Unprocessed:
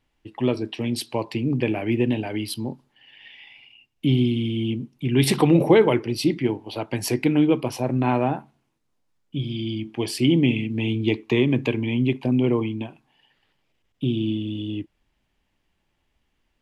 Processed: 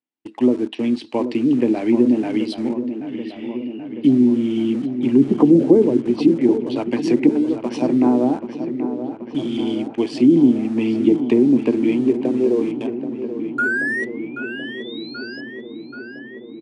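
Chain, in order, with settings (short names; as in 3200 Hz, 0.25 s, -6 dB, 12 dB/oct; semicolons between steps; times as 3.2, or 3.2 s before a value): 13.58–15.41 painted sound rise 1400–5200 Hz -21 dBFS; treble ducked by the level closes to 400 Hz, closed at -15 dBFS; 7.29–7.82 tilt +4.5 dB/oct; high-pass sweep 260 Hz -> 1400 Hz, 11.69–15.03; in parallel at -9.5 dB: sample gate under -28.5 dBFS; on the sum: gate with hold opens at -41 dBFS; on a send: darkening echo 0.781 s, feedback 73%, low-pass 3500 Hz, level -10.5 dB; on the sum: downsampling 22050 Hz; gain -1 dB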